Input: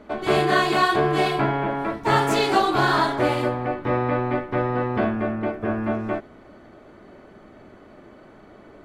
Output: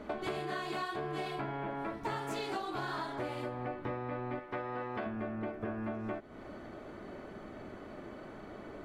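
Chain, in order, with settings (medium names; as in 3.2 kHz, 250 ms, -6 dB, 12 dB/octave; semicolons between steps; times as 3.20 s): 4.39–5.06 s: bass shelf 310 Hz -11.5 dB; compression 10:1, threshold -35 dBFS, peak gain reduction 21 dB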